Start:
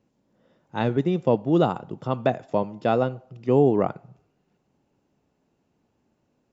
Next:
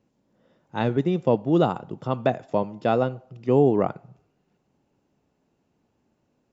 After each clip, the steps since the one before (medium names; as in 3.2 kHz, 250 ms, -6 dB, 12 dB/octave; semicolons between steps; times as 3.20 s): no audible change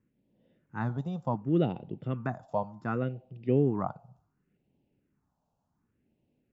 treble shelf 3.7 kHz -8.5 dB; phase shifter stages 4, 0.68 Hz, lowest notch 340–1300 Hz; trim -3.5 dB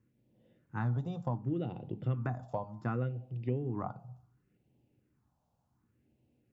compression 10:1, threshold -32 dBFS, peak gain reduction 13 dB; on a send at -12 dB: reverberation RT60 0.40 s, pre-delay 3 ms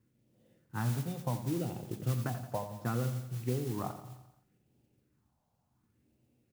modulation noise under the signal 16 dB; feedback delay 87 ms, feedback 55%, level -11.5 dB